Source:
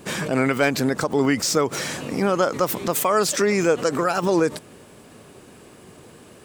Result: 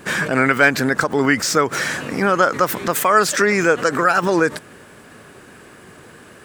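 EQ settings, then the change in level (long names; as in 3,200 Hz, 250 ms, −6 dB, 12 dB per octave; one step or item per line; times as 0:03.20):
parametric band 1,600 Hz +10.5 dB 0.84 octaves
+1.5 dB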